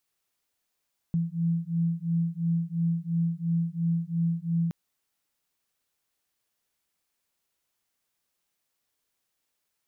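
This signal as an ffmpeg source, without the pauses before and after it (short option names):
-f lavfi -i "aevalsrc='0.0422*(sin(2*PI*166*t)+sin(2*PI*168.9*t))':d=3.57:s=44100"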